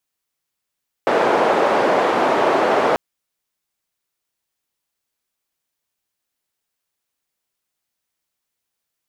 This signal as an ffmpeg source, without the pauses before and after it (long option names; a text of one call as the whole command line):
ffmpeg -f lavfi -i "anoisesrc=color=white:duration=1.89:sample_rate=44100:seed=1,highpass=frequency=480,lowpass=frequency=620,volume=7.9dB" out.wav